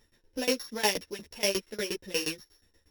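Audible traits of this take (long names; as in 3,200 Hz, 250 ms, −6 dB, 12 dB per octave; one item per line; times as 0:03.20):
a buzz of ramps at a fixed pitch in blocks of 8 samples
tremolo saw down 8.4 Hz, depth 100%
a shimmering, thickened sound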